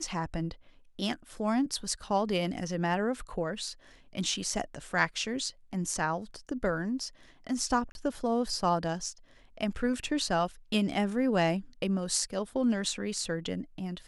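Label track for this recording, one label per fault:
7.920000	7.950000	gap 31 ms

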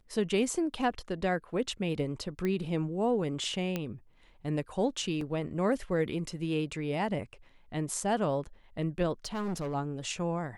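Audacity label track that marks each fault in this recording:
2.450000	2.450000	pop -21 dBFS
3.760000	3.760000	pop -18 dBFS
5.210000	5.210000	gap 2.7 ms
9.250000	9.750000	clipped -30.5 dBFS

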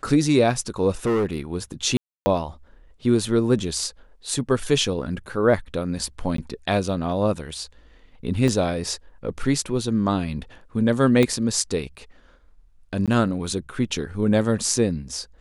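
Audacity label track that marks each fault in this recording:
1.050000	1.400000	clipped -18 dBFS
1.970000	2.260000	gap 0.29 s
6.370000	6.380000	gap 13 ms
8.480000	8.480000	gap 2.7 ms
11.230000	11.230000	pop -8 dBFS
13.060000	13.080000	gap 17 ms

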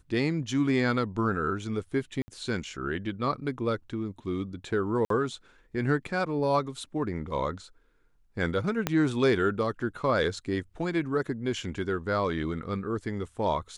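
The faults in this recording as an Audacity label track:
2.220000	2.280000	gap 60 ms
5.050000	5.100000	gap 53 ms
8.870000	8.870000	pop -10 dBFS

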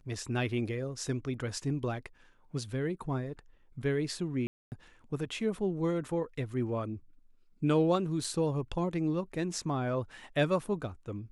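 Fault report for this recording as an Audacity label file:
4.470000	4.720000	gap 0.249 s
8.240000	8.240000	gap 3.9 ms

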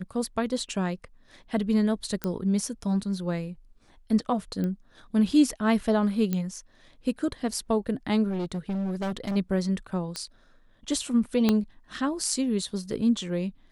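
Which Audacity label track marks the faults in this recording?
2.240000	2.240000	pop -14 dBFS
4.640000	4.640000	pop -20 dBFS
6.330000	6.330000	pop -15 dBFS
8.290000	9.370000	clipped -26.5 dBFS
10.160000	10.160000	pop -17 dBFS
11.490000	11.490000	pop -9 dBFS

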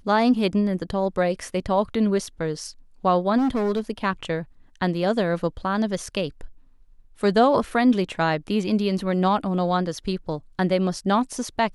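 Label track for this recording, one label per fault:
3.370000	3.800000	clipped -19 dBFS

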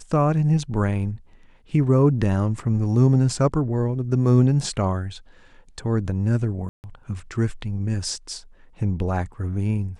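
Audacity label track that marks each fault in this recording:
6.690000	6.840000	gap 0.149 s

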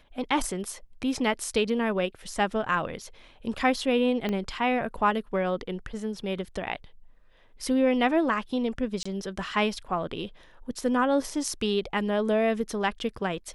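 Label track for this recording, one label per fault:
4.290000	4.290000	pop -17 dBFS
9.030000	9.050000	gap 25 ms

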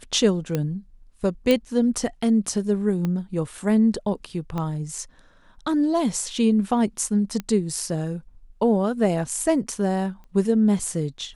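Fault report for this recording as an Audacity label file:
0.550000	0.550000	pop -11 dBFS
1.510000	1.510000	pop -8 dBFS
3.050000	3.050000	pop -15 dBFS
4.580000	4.580000	pop -17 dBFS
7.400000	7.400000	pop -16 dBFS
10.240000	10.240000	pop -35 dBFS

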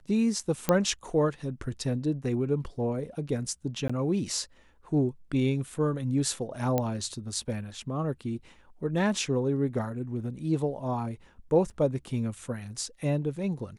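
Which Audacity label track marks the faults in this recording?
0.690000	0.690000	pop -9 dBFS
3.880000	3.900000	gap 15 ms
6.780000	6.780000	pop -13 dBFS
11.700000	11.710000	gap 6.4 ms

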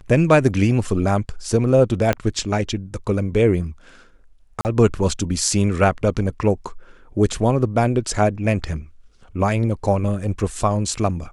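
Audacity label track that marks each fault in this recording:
2.130000	2.130000	pop -7 dBFS
4.610000	4.650000	gap 39 ms

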